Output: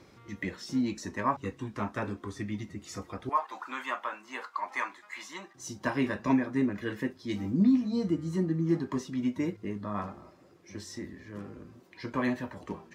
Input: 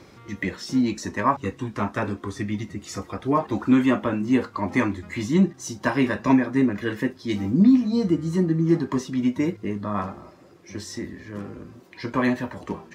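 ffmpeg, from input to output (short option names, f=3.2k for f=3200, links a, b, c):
-filter_complex "[0:a]asettb=1/sr,asplit=3[a][b][c];[a]atrim=end=3.294[d];[b]atrim=start=3.29:end=5.55,asetpts=PTS-STARTPTS,afade=t=in:d=0.004:c=qsin,afade=t=out:st=2.256:d=0.004:c=qsin,highpass=f=980:t=q:w=1.6[e];[c]atrim=start=5.546[f];[d][e]acrossfade=d=0.004:c1=hsin:c2=qsin[g];[g][f]acrossfade=d=0.004:c1=qsin:c2=hsin,volume=-7.5dB"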